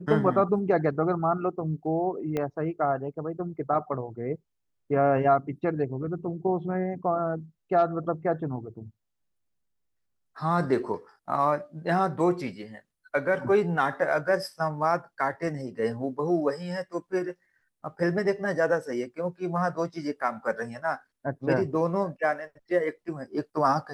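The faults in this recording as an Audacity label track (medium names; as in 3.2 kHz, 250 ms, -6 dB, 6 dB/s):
2.370000	2.370000	pop -17 dBFS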